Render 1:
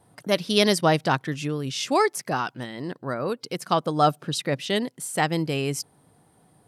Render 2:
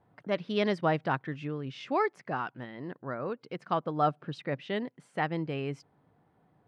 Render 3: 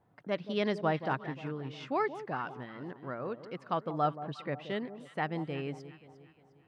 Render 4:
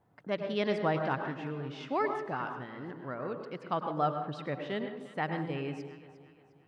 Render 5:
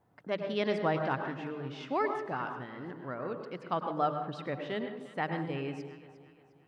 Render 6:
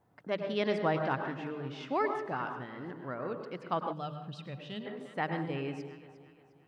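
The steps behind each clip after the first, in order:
Chebyshev low-pass 2000 Hz, order 2; gain -6.5 dB
echo with dull and thin repeats by turns 0.177 s, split 1000 Hz, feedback 63%, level -11.5 dB; gain -3 dB
on a send at -5 dB: high shelf 4600 Hz -12 dB + reverb RT60 0.45 s, pre-delay 93 ms
notches 50/100/150/200 Hz
spectral gain 3.93–4.86, 230–2400 Hz -11 dB

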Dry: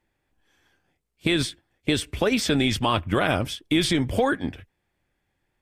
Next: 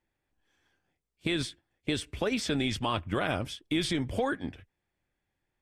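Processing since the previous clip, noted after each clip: LPF 11000 Hz 12 dB/oct; gain -7.5 dB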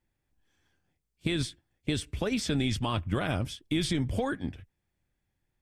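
tone controls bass +8 dB, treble +4 dB; gain -2.5 dB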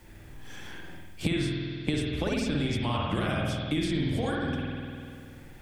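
spring tank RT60 1.1 s, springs 49 ms, chirp 50 ms, DRR -3 dB; three-band squash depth 100%; gain -3.5 dB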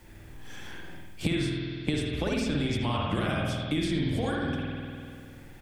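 echo 80 ms -15.5 dB

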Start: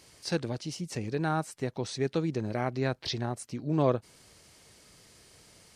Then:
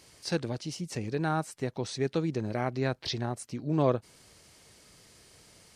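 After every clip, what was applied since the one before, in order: nothing audible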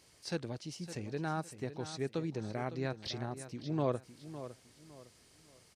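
feedback echo 0.558 s, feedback 30%, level -12.5 dB; gain -7 dB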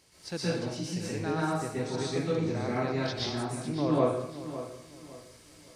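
plate-style reverb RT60 0.73 s, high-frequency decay 0.9×, pre-delay 0.11 s, DRR -7.5 dB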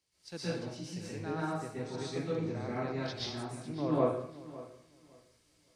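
high shelf 6100 Hz -5 dB; three-band expander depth 40%; gain -5.5 dB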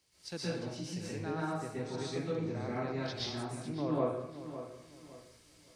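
compressor 1.5:1, threshold -55 dBFS, peak gain reduction 11.5 dB; gain +7.5 dB

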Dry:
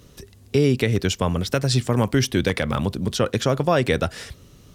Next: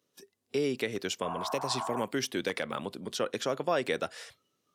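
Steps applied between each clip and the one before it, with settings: spectral noise reduction 15 dB; spectral repair 1.26–1.98, 640–1700 Hz; HPF 300 Hz 12 dB/oct; gain -8.5 dB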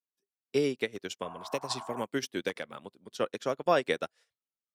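upward expander 2.5:1, over -50 dBFS; gain +5 dB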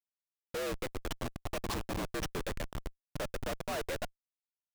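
rattling part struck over -43 dBFS, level -31 dBFS; frequency shift +68 Hz; Schmitt trigger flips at -34 dBFS; gain -1 dB

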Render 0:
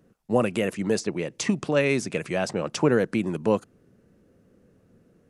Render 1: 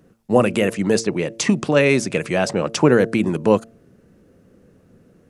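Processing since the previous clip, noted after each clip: de-hum 113.2 Hz, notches 6; gain +7 dB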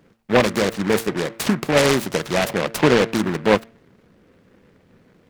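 bell 1000 Hz +4 dB 2.4 oct; noise-modulated delay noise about 1300 Hz, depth 0.14 ms; gain -3 dB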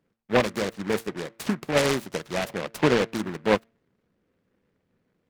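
upward expander 1.5:1, over -38 dBFS; gain -4.5 dB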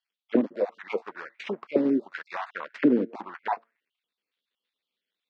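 random spectral dropouts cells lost 24%; auto-wah 270–3600 Hz, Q 4, down, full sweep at -19.5 dBFS; Chebyshev band-pass 220–4900 Hz, order 2; gain +8 dB

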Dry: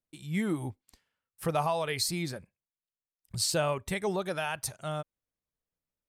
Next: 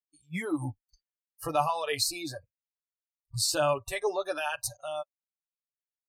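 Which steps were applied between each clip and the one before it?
spectral noise reduction 29 dB; comb 6.9 ms, depth 68%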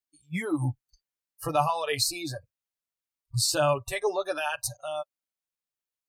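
dynamic EQ 130 Hz, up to +6 dB, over -53 dBFS, Q 2.8; gain +2 dB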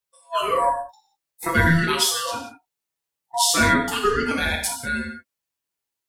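ring modulator 830 Hz; non-linear reverb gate 0.22 s falling, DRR -0.5 dB; gain +7 dB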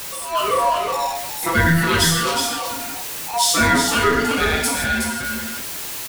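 zero-crossing step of -23.5 dBFS; echo 0.367 s -5 dB

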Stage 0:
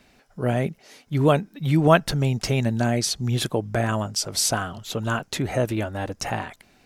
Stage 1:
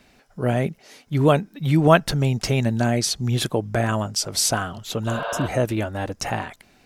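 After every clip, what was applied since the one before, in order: spectral repair 5.13–5.45, 370–5000 Hz before; gain +1.5 dB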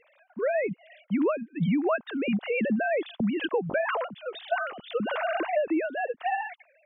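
sine-wave speech; compressor 16:1, threshold -21 dBFS, peak gain reduction 15 dB; gain -1 dB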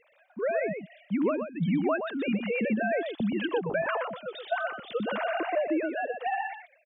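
echo 0.123 s -7 dB; gain -2 dB

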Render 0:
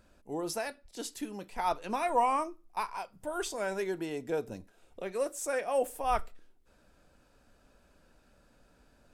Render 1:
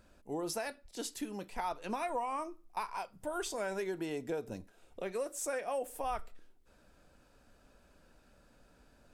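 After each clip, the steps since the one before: compressor 6:1, threshold -33 dBFS, peak gain reduction 11 dB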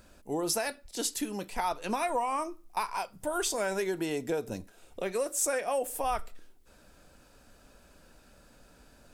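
high shelf 4300 Hz +6.5 dB; gain +5.5 dB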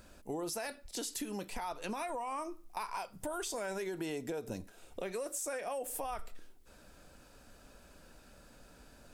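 limiter -25 dBFS, peak gain reduction 8 dB; compressor 4:1, threshold -36 dBFS, peak gain reduction 6 dB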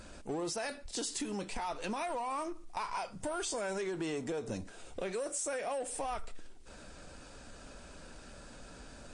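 G.711 law mismatch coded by mu; MP3 40 kbps 22050 Hz

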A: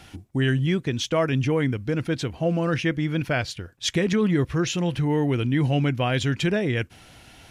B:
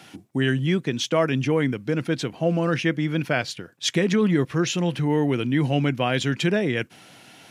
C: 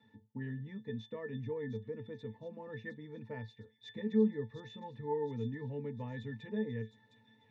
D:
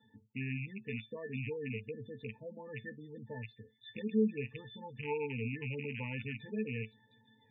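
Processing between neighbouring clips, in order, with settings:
HPF 140 Hz 24 dB/oct; gain +1.5 dB
octave resonator A, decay 0.16 s; thin delay 0.711 s, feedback 50%, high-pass 4900 Hz, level -3.5 dB; gain -4.5 dB
rattling part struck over -42 dBFS, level -29 dBFS; resonator 130 Hz, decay 0.21 s, harmonics all, mix 40%; spectral gate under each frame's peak -20 dB strong; gain +2.5 dB

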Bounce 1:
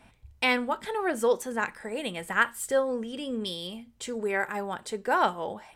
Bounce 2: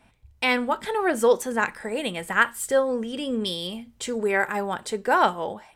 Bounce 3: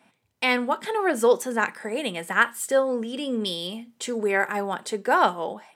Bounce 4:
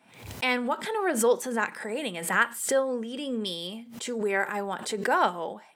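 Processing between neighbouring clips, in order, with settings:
AGC gain up to 8 dB; gain -2.5 dB
HPF 160 Hz 24 dB/oct
backwards sustainer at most 88 dB/s; gain -4 dB

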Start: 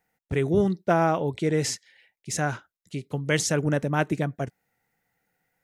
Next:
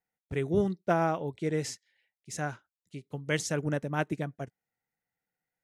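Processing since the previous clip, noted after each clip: upward expander 1.5:1, over -40 dBFS; gain -4 dB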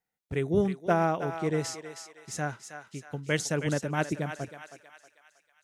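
thinning echo 0.318 s, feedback 53%, high-pass 770 Hz, level -7.5 dB; gain +1.5 dB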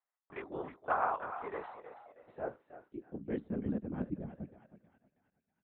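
LPC vocoder at 8 kHz whisper; band-pass sweep 1100 Hz -> 210 Hz, 1.52–3.59; gain +1 dB

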